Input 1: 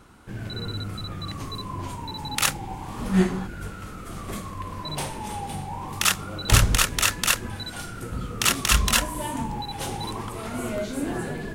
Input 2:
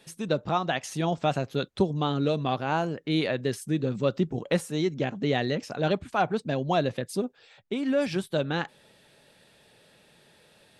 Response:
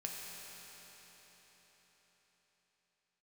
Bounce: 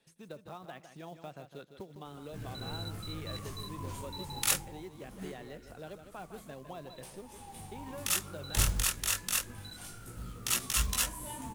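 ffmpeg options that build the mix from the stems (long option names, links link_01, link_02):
-filter_complex "[0:a]highshelf=frequency=5800:gain=11.5,flanger=delay=15.5:depth=6.3:speed=0.22,adelay=2050,volume=1.5dB,afade=type=out:start_time=4.49:duration=0.41:silence=0.223872,afade=type=in:start_time=7.17:duration=0.6:silence=0.334965[link_01];[1:a]acrossover=split=380|2600[link_02][link_03][link_04];[link_02]acompressor=threshold=-36dB:ratio=4[link_05];[link_03]acompressor=threshold=-29dB:ratio=4[link_06];[link_04]acompressor=threshold=-48dB:ratio=4[link_07];[link_05][link_06][link_07]amix=inputs=3:normalize=0,volume=-15.5dB,asplit=2[link_08][link_09];[link_09]volume=-9.5dB,aecho=0:1:157|314|471|628:1|0.28|0.0784|0.022[link_10];[link_01][link_08][link_10]amix=inputs=3:normalize=0,lowshelf=frequency=74:gain=4,acrusher=bits=5:mode=log:mix=0:aa=0.000001"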